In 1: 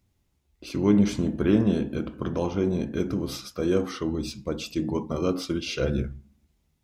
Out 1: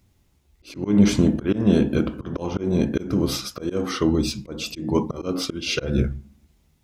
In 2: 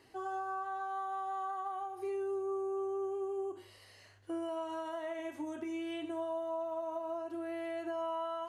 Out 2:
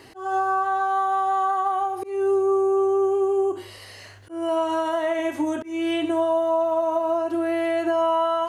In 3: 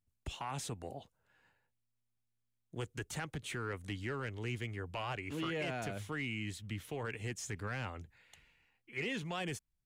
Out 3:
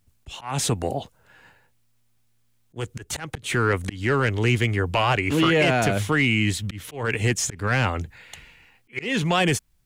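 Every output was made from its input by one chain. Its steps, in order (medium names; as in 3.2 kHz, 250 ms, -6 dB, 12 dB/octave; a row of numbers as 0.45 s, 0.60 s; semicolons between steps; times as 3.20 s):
slow attack 232 ms; normalise loudness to -23 LUFS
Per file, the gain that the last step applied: +8.5 dB, +16.0 dB, +18.5 dB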